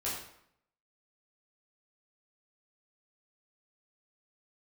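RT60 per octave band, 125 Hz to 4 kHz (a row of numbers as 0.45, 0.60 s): 0.75, 0.75, 0.70, 0.70, 0.65, 0.55 s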